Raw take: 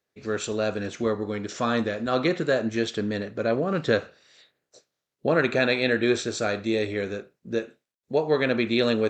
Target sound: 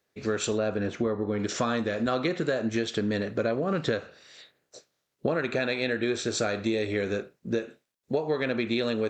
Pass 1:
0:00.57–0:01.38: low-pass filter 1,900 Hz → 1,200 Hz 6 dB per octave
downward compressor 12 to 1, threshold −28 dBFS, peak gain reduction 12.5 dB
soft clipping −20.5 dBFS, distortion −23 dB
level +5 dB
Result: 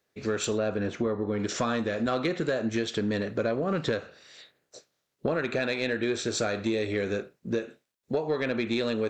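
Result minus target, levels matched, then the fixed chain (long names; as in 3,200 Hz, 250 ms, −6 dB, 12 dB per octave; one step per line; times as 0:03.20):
soft clipping: distortion +14 dB
0:00.57–0:01.38: low-pass filter 1,900 Hz → 1,200 Hz 6 dB per octave
downward compressor 12 to 1, threshold −28 dBFS, peak gain reduction 12.5 dB
soft clipping −12.5 dBFS, distortion −37 dB
level +5 dB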